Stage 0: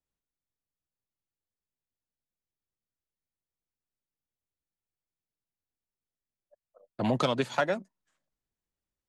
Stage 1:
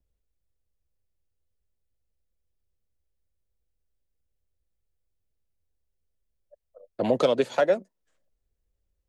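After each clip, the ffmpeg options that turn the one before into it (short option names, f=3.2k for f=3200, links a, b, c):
-filter_complex "[0:a]equalizer=f=125:t=o:w=1:g=-6,equalizer=f=500:t=o:w=1:g=11,equalizer=f=1k:t=o:w=1:g=-4,acrossover=split=110[a][b];[a]acompressor=mode=upward:threshold=-58dB:ratio=2.5[c];[c][b]amix=inputs=2:normalize=0"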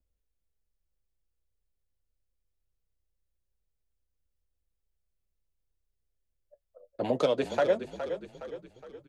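-filter_complex "[0:a]flanger=delay=3.5:depth=4.6:regen=-55:speed=0.23:shape=triangular,asplit=2[a][b];[b]asplit=5[c][d][e][f][g];[c]adelay=415,afreqshift=-31,volume=-10dB[h];[d]adelay=830,afreqshift=-62,volume=-16.4dB[i];[e]adelay=1245,afreqshift=-93,volume=-22.8dB[j];[f]adelay=1660,afreqshift=-124,volume=-29.1dB[k];[g]adelay=2075,afreqshift=-155,volume=-35.5dB[l];[h][i][j][k][l]amix=inputs=5:normalize=0[m];[a][m]amix=inputs=2:normalize=0"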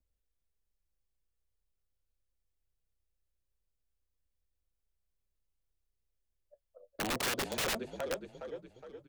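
-af "aeval=exprs='(mod(17.8*val(0)+1,2)-1)/17.8':c=same,volume=-2.5dB"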